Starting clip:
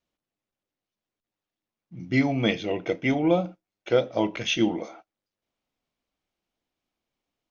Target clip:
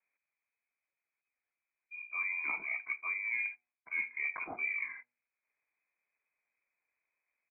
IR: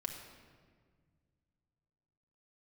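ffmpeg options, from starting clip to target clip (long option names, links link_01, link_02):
-af "highshelf=frequency=2200:gain=-5.5,lowpass=frequency=3200:width_type=q:width=0.5098,lowpass=frequency=3200:width_type=q:width=0.6013,lowpass=frequency=3200:width_type=q:width=0.9,lowpass=frequency=3200:width_type=q:width=2.563,afreqshift=-3800,areverse,acompressor=threshold=-34dB:ratio=6,areverse,asetrate=29433,aresample=44100,atempo=1.49831,bandreject=frequency=121.7:width_type=h:width=4,bandreject=frequency=243.4:width_type=h:width=4,bandreject=frequency=365.1:width_type=h:width=4,bandreject=frequency=486.8:width_type=h:width=4,bandreject=frequency=608.5:width_type=h:width=4,bandreject=frequency=730.2:width_type=h:width=4,bandreject=frequency=851.9:width_type=h:width=4"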